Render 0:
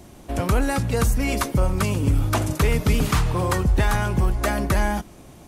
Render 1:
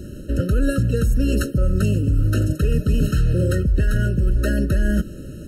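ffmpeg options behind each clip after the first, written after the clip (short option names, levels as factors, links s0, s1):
-af "lowshelf=f=460:g=7.5,areverse,acompressor=threshold=0.1:ratio=8,areverse,afftfilt=real='re*eq(mod(floor(b*sr/1024/630),2),0)':imag='im*eq(mod(floor(b*sr/1024/630),2),0)':win_size=1024:overlap=0.75,volume=1.88"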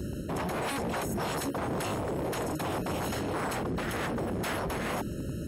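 -filter_complex "[0:a]acrossover=split=3700[s0][s1];[s0]aeval=exprs='0.0562*(abs(mod(val(0)/0.0562+3,4)-2)-1)':c=same[s2];[s2][s1]amix=inputs=2:normalize=0,highpass=61,alimiter=level_in=1.06:limit=0.0631:level=0:latency=1:release=20,volume=0.944"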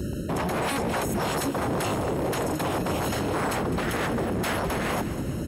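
-af "aecho=1:1:206|412|618|824|1030:0.224|0.116|0.0605|0.0315|0.0164,volume=1.78"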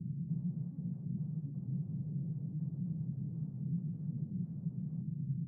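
-af "asuperpass=centerf=150:order=4:qfactor=2.9,volume=0.841"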